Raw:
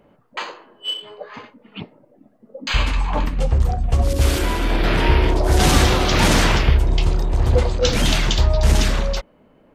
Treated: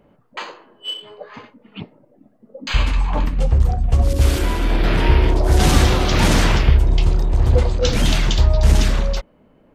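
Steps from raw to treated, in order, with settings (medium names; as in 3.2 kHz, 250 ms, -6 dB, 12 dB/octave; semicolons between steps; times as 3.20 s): bass shelf 260 Hz +4.5 dB; trim -2 dB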